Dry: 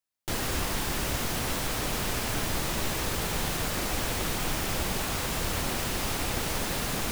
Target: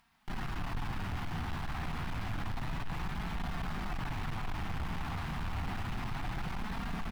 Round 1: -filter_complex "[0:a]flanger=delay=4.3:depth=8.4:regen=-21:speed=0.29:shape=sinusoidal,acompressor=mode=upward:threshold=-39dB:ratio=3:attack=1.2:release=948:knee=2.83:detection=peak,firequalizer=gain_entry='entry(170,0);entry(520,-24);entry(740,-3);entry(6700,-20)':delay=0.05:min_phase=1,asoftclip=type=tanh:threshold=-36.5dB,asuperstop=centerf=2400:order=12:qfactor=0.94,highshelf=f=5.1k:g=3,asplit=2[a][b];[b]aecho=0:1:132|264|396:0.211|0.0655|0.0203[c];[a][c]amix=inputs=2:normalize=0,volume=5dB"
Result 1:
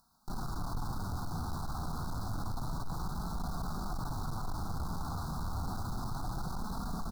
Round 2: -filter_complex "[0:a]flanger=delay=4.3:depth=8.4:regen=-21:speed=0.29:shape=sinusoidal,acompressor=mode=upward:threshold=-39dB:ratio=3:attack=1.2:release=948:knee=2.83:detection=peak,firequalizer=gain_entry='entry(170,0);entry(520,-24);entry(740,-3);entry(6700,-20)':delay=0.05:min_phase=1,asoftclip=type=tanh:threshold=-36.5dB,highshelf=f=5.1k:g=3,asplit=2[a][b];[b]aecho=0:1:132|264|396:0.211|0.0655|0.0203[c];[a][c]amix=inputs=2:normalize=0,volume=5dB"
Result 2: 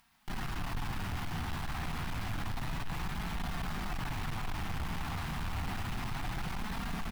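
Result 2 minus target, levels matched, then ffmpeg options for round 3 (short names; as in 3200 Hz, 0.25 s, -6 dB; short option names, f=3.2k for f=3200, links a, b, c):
8000 Hz band +5.5 dB
-filter_complex "[0:a]flanger=delay=4.3:depth=8.4:regen=-21:speed=0.29:shape=sinusoidal,acompressor=mode=upward:threshold=-39dB:ratio=3:attack=1.2:release=948:knee=2.83:detection=peak,firequalizer=gain_entry='entry(170,0);entry(520,-24);entry(740,-3);entry(6700,-20)':delay=0.05:min_phase=1,asoftclip=type=tanh:threshold=-36.5dB,highshelf=f=5.1k:g=-6,asplit=2[a][b];[b]aecho=0:1:132|264|396:0.211|0.0655|0.0203[c];[a][c]amix=inputs=2:normalize=0,volume=5dB"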